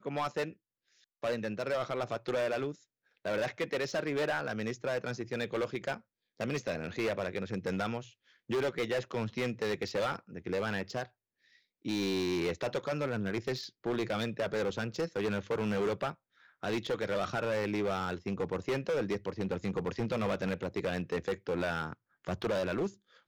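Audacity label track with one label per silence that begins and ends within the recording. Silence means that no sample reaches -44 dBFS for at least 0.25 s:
0.530000	1.240000	silence
2.730000	3.250000	silence
5.970000	6.400000	silence
8.080000	8.500000	silence
11.050000	11.850000	silence
16.120000	16.630000	silence
21.930000	22.250000	silence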